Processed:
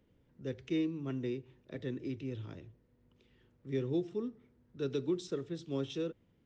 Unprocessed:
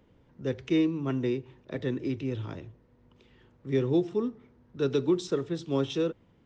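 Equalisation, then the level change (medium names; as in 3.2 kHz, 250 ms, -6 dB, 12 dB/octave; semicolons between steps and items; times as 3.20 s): peaking EQ 950 Hz -6 dB 1.1 oct; -7.5 dB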